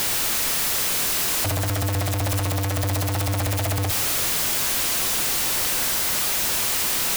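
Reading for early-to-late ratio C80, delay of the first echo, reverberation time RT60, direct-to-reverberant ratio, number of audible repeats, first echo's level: 12.0 dB, no echo audible, 2.4 s, 10.0 dB, no echo audible, no echo audible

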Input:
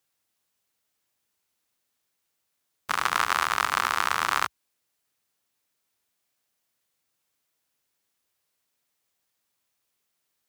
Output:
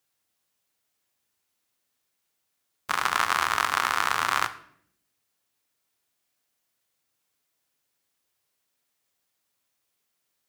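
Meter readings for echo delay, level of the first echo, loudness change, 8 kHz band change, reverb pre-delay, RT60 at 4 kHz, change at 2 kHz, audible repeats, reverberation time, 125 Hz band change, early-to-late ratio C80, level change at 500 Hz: no echo audible, no echo audible, +0.5 dB, +0.5 dB, 3 ms, 0.50 s, +0.5 dB, no echo audible, 0.65 s, +0.5 dB, 17.5 dB, +0.5 dB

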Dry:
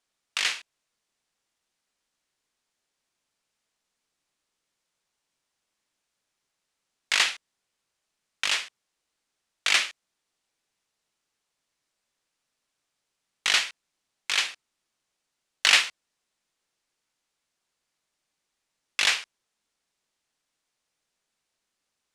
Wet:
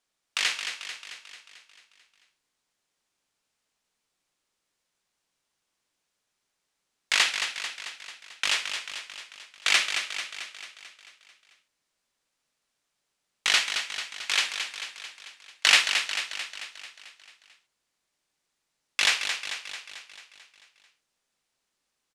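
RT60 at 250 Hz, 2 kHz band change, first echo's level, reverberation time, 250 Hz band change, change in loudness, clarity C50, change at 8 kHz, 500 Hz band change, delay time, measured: no reverb audible, +1.0 dB, −7.5 dB, no reverb audible, +1.0 dB, −1.5 dB, no reverb audible, +1.0 dB, +1.0 dB, 221 ms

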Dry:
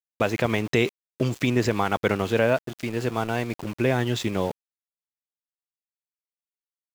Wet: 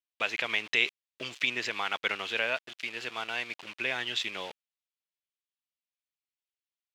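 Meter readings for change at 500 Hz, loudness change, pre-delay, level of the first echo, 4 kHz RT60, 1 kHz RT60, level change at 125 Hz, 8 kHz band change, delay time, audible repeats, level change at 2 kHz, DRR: −15.0 dB, −6.0 dB, no reverb audible, no echo audible, no reverb audible, no reverb audible, −27.5 dB, −7.0 dB, no echo audible, no echo audible, 0.0 dB, no reverb audible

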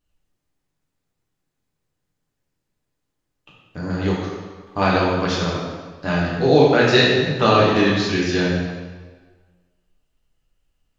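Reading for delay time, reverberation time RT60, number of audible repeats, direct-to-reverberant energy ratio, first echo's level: no echo audible, 1.4 s, no echo audible, −5.5 dB, no echo audible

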